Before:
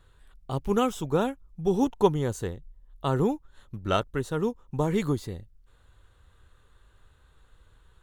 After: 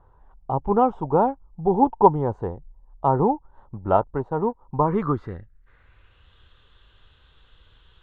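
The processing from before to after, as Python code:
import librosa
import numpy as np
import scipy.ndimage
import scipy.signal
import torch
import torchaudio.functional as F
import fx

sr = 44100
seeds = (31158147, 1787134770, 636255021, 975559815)

y = fx.law_mismatch(x, sr, coded='A', at=(4.17, 4.6), fade=0.02)
y = fx.filter_sweep_lowpass(y, sr, from_hz=880.0, to_hz=3200.0, start_s=4.63, end_s=6.34, q=4.5)
y = y * librosa.db_to_amplitude(2.0)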